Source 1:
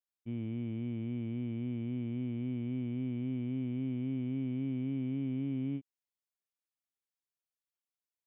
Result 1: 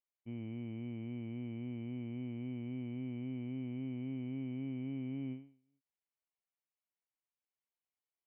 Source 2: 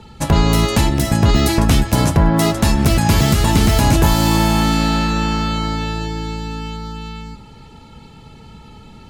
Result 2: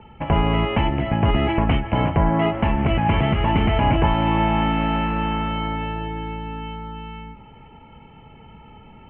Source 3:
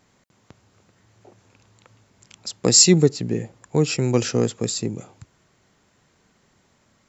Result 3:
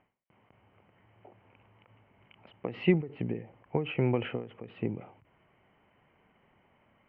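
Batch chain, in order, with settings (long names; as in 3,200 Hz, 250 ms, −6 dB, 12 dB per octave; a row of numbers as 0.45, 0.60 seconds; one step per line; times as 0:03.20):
Chebyshev low-pass with heavy ripple 3,100 Hz, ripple 6 dB
every ending faded ahead of time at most 130 dB per second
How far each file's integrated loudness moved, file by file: −5.5, −5.0, −13.5 LU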